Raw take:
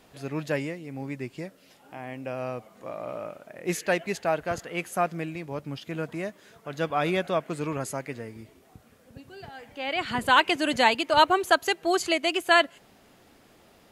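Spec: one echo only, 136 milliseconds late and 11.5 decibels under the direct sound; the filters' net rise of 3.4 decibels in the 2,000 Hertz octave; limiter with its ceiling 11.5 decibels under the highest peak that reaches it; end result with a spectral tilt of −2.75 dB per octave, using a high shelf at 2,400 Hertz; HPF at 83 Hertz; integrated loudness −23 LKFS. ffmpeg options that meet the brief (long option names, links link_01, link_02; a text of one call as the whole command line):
ffmpeg -i in.wav -af "highpass=83,equalizer=frequency=2000:width_type=o:gain=6.5,highshelf=frequency=2400:gain=-4.5,alimiter=limit=-15dB:level=0:latency=1,aecho=1:1:136:0.266,volume=6.5dB" out.wav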